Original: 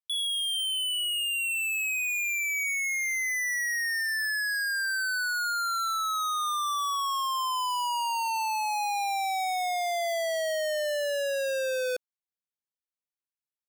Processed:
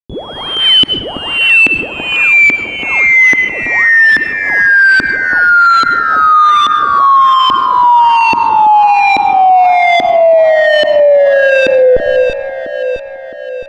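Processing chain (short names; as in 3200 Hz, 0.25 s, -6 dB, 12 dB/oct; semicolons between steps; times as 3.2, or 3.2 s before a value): whine 13000 Hz -53 dBFS; Schmitt trigger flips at -46 dBFS; LFO low-pass saw up 1.2 Hz 280–3200 Hz; echo with dull and thin repeats by turns 0.332 s, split 1400 Hz, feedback 70%, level -12 dB; on a send at -16 dB: reverb RT60 0.85 s, pre-delay 90 ms; on the sum: maximiser +28 dB; gain -1 dB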